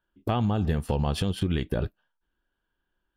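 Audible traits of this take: noise floor -82 dBFS; spectral tilt -6.5 dB/octave

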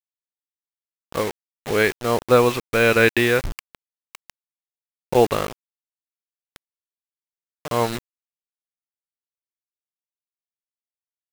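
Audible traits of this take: tremolo triangle 1.4 Hz, depth 60%; a quantiser's noise floor 6-bit, dither none

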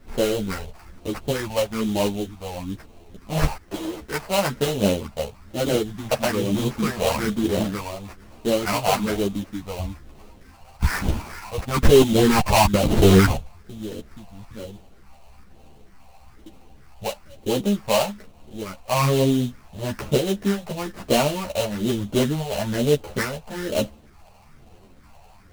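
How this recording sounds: phasing stages 4, 1.1 Hz, lowest notch 300–2000 Hz; aliases and images of a low sample rate 3.5 kHz, jitter 20%; a shimmering, thickened sound

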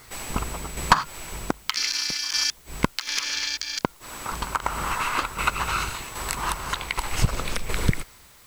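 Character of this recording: tremolo saw down 1.3 Hz, depth 55%; a quantiser's noise floor 10-bit, dither triangular

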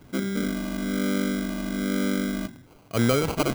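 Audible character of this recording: phasing stages 2, 1.1 Hz, lowest notch 470–1400 Hz; aliases and images of a low sample rate 1.8 kHz, jitter 0%

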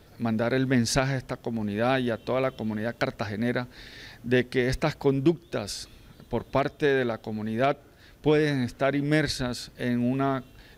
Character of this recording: noise floor -54 dBFS; spectral tilt -5.0 dB/octave

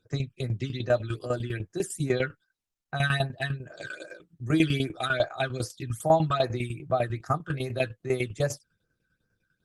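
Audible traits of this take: tremolo saw down 10 Hz, depth 80%; phasing stages 12, 2.5 Hz, lowest notch 670–3700 Hz; Opus

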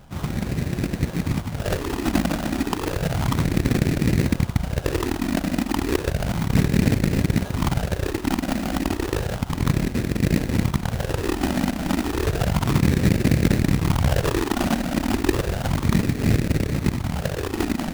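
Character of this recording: phasing stages 6, 0.32 Hz, lowest notch 110–1100 Hz; aliases and images of a low sample rate 2.2 kHz, jitter 20%

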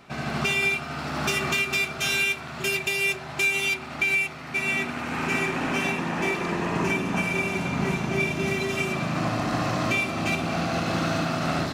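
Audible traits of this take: noise floor -37 dBFS; spectral tilt -4.0 dB/octave

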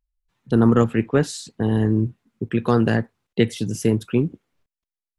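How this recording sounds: noise floor -91 dBFS; spectral tilt -7.0 dB/octave

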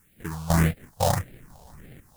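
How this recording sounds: aliases and images of a low sample rate 1.3 kHz, jitter 20%; random-step tremolo 4 Hz, depth 90%; a quantiser's noise floor 12-bit, dither triangular; phasing stages 4, 1.7 Hz, lowest notch 320–1000 Hz

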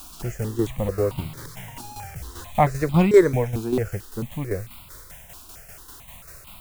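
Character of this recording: a quantiser's noise floor 8-bit, dither triangular; tremolo saw down 5.1 Hz, depth 60%; notches that jump at a steady rate 4.5 Hz 530–1700 Hz

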